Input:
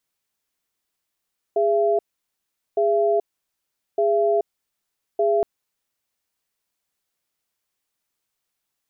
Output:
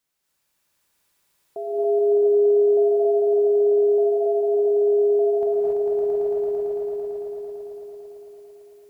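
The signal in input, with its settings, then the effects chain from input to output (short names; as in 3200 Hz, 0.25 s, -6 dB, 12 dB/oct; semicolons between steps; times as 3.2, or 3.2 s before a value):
cadence 411 Hz, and 674 Hz, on 0.43 s, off 0.78 s, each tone -19 dBFS 3.87 s
limiter -24 dBFS; swelling echo 0.112 s, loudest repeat 5, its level -3.5 dB; non-linear reverb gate 0.31 s rising, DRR -5 dB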